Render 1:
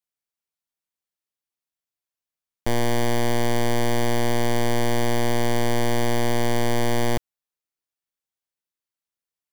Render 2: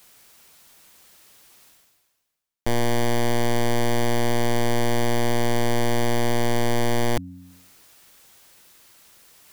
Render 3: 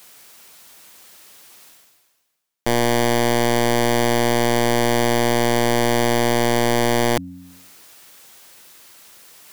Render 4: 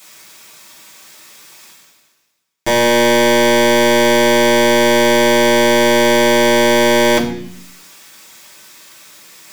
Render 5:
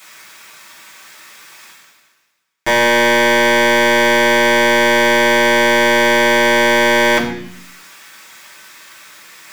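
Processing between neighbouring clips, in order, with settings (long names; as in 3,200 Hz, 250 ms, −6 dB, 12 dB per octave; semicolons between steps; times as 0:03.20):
hum removal 90.31 Hz, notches 3; reversed playback; upward compression, threshold −23 dBFS; reversed playback
low-shelf EQ 110 Hz −11 dB; level +6.5 dB
convolution reverb RT60 0.65 s, pre-delay 3 ms, DRR −7 dB
in parallel at −1.5 dB: brickwall limiter −9 dBFS, peak gain reduction 7.5 dB; on the sum: parametric band 1,600 Hz +9.5 dB 1.8 octaves; level −7.5 dB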